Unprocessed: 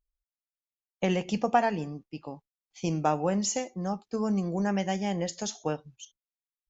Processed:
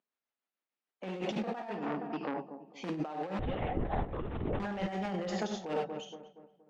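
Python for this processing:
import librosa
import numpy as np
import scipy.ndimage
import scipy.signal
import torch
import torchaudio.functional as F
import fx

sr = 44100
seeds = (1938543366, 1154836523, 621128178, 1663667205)

p1 = (np.mod(10.0 ** (22.5 / 20.0) * x + 1.0, 2.0) - 1.0) / 10.0 ** (22.5 / 20.0)
p2 = x + (p1 * librosa.db_to_amplitude(-6.0))
p3 = scipy.signal.sosfilt(scipy.signal.butter(4, 200.0, 'highpass', fs=sr, output='sos'), p2)
p4 = fx.rev_gated(p3, sr, seeds[0], gate_ms=120, shape='flat', drr_db=5.0)
p5 = fx.lpc_vocoder(p4, sr, seeds[1], excitation='whisper', order=10, at=(3.39, 4.6))
p6 = fx.echo_filtered(p5, sr, ms=235, feedback_pct=43, hz=1600.0, wet_db=-15.0)
p7 = p6 * (1.0 - 0.38 / 2.0 + 0.38 / 2.0 * np.cos(2.0 * np.pi * 6.7 * (np.arange(len(p6)) / sr)))
p8 = fx.over_compress(p7, sr, threshold_db=-35.0, ratio=-1.0)
p9 = scipy.signal.sosfilt(scipy.signal.butter(2, 2600.0, 'lowpass', fs=sr, output='sos'), p8)
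y = fx.transformer_sat(p9, sr, knee_hz=1100.0, at=(1.66, 2.89))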